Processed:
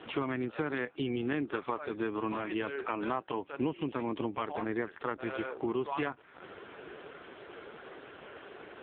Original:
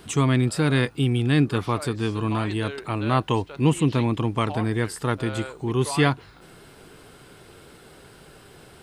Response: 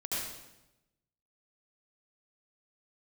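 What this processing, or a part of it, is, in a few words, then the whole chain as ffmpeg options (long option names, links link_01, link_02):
voicemail: -filter_complex "[0:a]asettb=1/sr,asplit=3[link_01][link_02][link_03];[link_01]atrim=end=3.924[link_04];[link_02]atrim=start=3.92:end=5.3,asetpts=PTS-STARTPTS,afade=type=in:duration=0.004:curve=qsin,afade=type=out:start_time=1.376:duration=0.004:curve=qsin,lowshelf=frequency=93:gain=3.5[link_05];[link_03]atrim=start=5.296[link_06];[link_04][link_05]acrossfade=duration=0.004:curve1=hsin:curve2=qsin[link_07];[link_07][link_06]acrossfade=duration=0.004:curve1=qsin:curve2=hsin,highpass=330,lowpass=3000,acompressor=threshold=-36dB:ratio=8,volume=7dB" -ar 8000 -c:a libopencore_amrnb -b:a 4750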